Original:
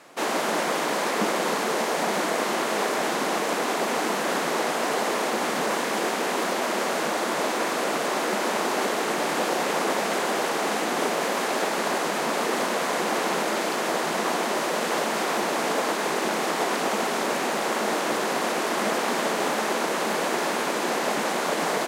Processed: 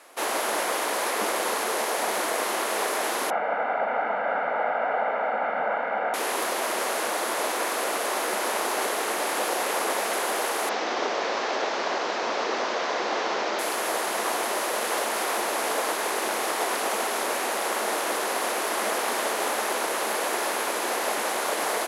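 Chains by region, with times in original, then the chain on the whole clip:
0:03.30–0:06.14: low-pass filter 1,900 Hz 24 dB per octave + comb filter 1.4 ms, depth 80%
0:10.69–0:13.59: linear delta modulator 32 kbit/s, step −23.5 dBFS + high-pass filter 210 Hz 6 dB per octave + spectral tilt −1.5 dB per octave
whole clip: high-pass filter 400 Hz 12 dB per octave; parametric band 11,000 Hz +12.5 dB 0.32 octaves; level −1 dB

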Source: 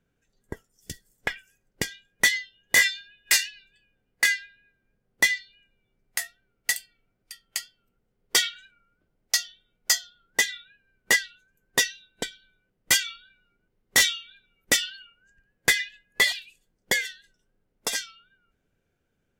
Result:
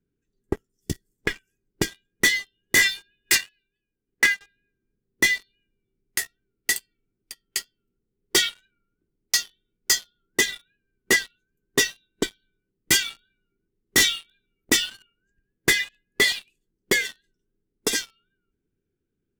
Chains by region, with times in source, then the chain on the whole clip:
0:03.35–0:04.41: transient designer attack +8 dB, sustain −6 dB + bass and treble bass −3 dB, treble −10 dB
whole clip: low shelf with overshoot 480 Hz +8 dB, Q 3; leveller curve on the samples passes 3; level −7 dB

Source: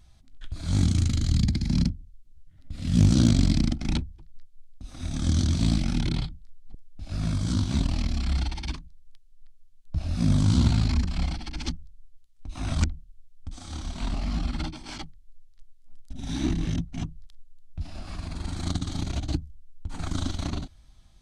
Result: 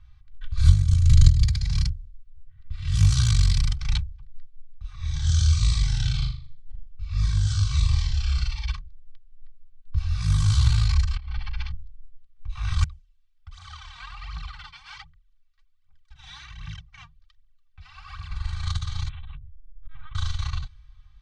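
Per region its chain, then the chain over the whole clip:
0:00.57–0:01.43: low shelf with overshoot 350 Hz +9.5 dB, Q 1.5 + compressor whose output falls as the input rises −16 dBFS, ratio −0.5
0:04.94–0:08.66: Butterworth low-pass 8,600 Hz 48 dB per octave + flutter between parallel walls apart 6.8 metres, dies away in 0.48 s + phaser whose notches keep moving one way falling 1.4 Hz
0:11.16–0:11.72: mains-hum notches 50/100/150/200/250/300/350/400/450 Hz + compressor whose output falls as the input rises −31 dBFS, ratio −0.5 + high-frequency loss of the air 190 metres
0:12.83–0:18.30: high-pass filter 340 Hz 6 dB per octave + downward compressor 2.5 to 1, threshold −39 dBFS + phase shifter 1.3 Hz, delay 4.4 ms, feedback 73%
0:19.09–0:20.15: downward compressor, threshold −31 dBFS + amplitude modulation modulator 47 Hz, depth 80% + linear-prediction vocoder at 8 kHz pitch kept
whole clip: low-pass that shuts in the quiet parts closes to 2,400 Hz, open at −17 dBFS; elliptic band-stop filter 150–1,000 Hz, stop band 40 dB; comb filter 2.6 ms, depth 83%; level +1 dB

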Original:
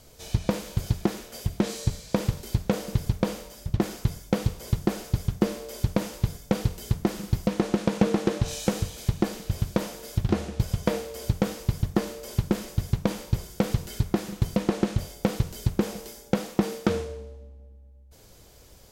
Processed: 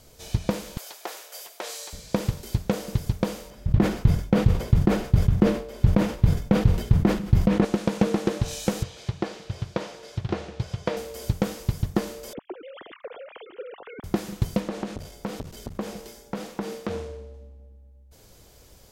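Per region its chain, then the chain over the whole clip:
0:00.77–0:01.93: high-pass filter 550 Hz 24 dB per octave + high-shelf EQ 11,000 Hz +6 dB
0:03.50–0:07.65: bass and treble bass +6 dB, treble −13 dB + level that may fall only so fast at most 110 dB per second
0:08.83–0:10.97: band-pass filter 100–4,900 Hz + parametric band 230 Hz −9 dB 0.73 octaves
0:12.33–0:14.04: three sine waves on the formant tracks + dynamic equaliser 2,100 Hz, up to −3 dB, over −40 dBFS, Q 0.73 + downward compressor 3 to 1, threshold −38 dBFS
0:14.60–0:17.34: high-shelf EQ 7,300 Hz −6.5 dB + downward compressor 1.5 to 1, threshold −27 dBFS + saturating transformer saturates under 750 Hz
whole clip: no processing

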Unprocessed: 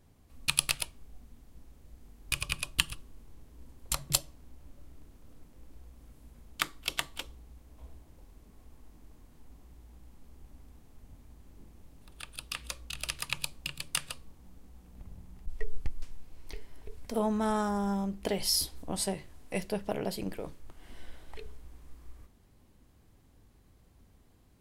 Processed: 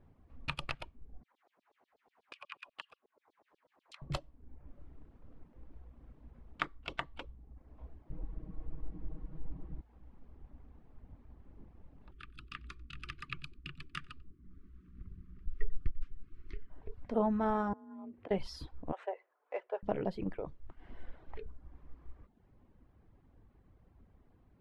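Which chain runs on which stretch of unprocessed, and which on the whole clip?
0:01.23–0:04.02: low-pass filter 11,000 Hz + downward compressor 1.5 to 1, threshold −52 dBFS + auto-filter high-pass saw down 8.2 Hz 460–5,100 Hz
0:08.10–0:09.81: low-pass filter 5,400 Hz + low-shelf EQ 460 Hz +12 dB + comb filter 6.3 ms, depth 93%
0:12.11–0:16.70: elliptic band-stop filter 390–1,200 Hz + single-tap delay 93 ms −15 dB
0:17.73–0:18.31: downward compressor 16 to 1, threshold −40 dBFS + frequency shifter +41 Hz + band-pass filter 190–2,800 Hz
0:18.92–0:19.83: running median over 9 samples + Butterworth high-pass 450 Hz + high-shelf EQ 3,900 Hz −8.5 dB
whole clip: low-pass filter 1,700 Hz 12 dB per octave; reverb reduction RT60 0.64 s

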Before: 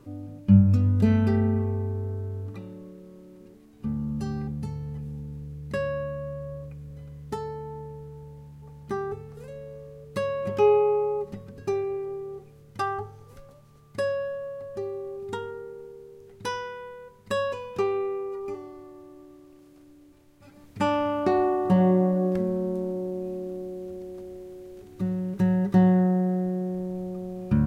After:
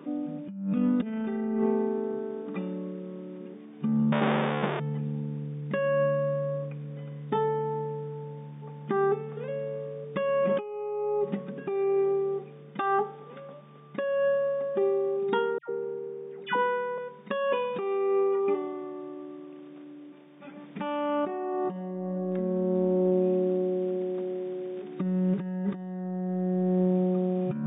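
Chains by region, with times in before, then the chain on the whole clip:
0:04.12–0:04.80: each half-wave held at its own peak + high-pass filter 350 Hz 6 dB per octave + high-shelf EQ 3,000 Hz −9.5 dB
0:15.58–0:16.98: parametric band 3,800 Hz −9.5 dB 1.1 octaves + all-pass dispersion lows, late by 113 ms, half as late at 1,300 Hz
whole clip: brick-wall band-pass 150–3,700 Hz; compressor whose output falls as the input rises −31 dBFS, ratio −1; level +3.5 dB

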